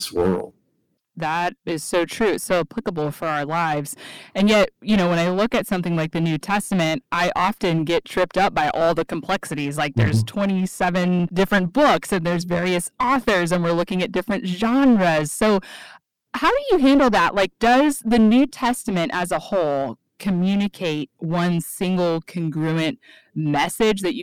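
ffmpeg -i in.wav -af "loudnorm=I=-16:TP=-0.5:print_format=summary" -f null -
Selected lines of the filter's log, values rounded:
Input Integrated:    -20.6 LUFS
Input True Peak:      -6.5 dBTP
Input LRA:             4.3 LU
Input Threshold:     -30.9 LUFS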